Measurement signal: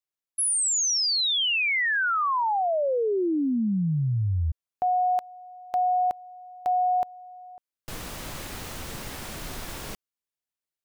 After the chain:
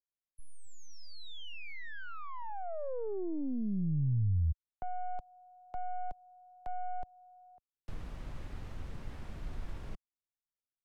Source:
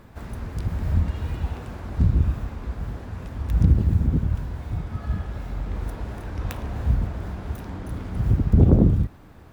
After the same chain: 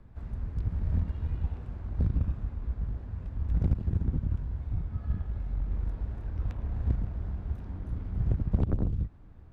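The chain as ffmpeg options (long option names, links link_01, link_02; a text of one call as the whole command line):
ffmpeg -i in.wav -filter_complex "[0:a]aeval=exprs='0.708*(cos(1*acos(clip(val(0)/0.708,-1,1)))-cos(1*PI/2))+0.141*(cos(3*acos(clip(val(0)/0.708,-1,1)))-cos(3*PI/2))+0.2*(cos(4*acos(clip(val(0)/0.708,-1,1)))-cos(4*PI/2))+0.112*(cos(6*acos(clip(val(0)/0.708,-1,1)))-cos(6*PI/2))+0.0112*(cos(7*acos(clip(val(0)/0.708,-1,1)))-cos(7*PI/2))':channel_layout=same,acrossover=split=130|680|2800[link_01][link_02][link_03][link_04];[link_01]acompressor=threshold=-36dB:ratio=4[link_05];[link_02]acompressor=threshold=-35dB:ratio=4[link_06];[link_03]acompressor=threshold=-46dB:ratio=4[link_07];[link_04]acompressor=threshold=-54dB:ratio=4[link_08];[link_05][link_06][link_07][link_08]amix=inputs=4:normalize=0,aemphasis=mode=reproduction:type=bsi,volume=-3.5dB" out.wav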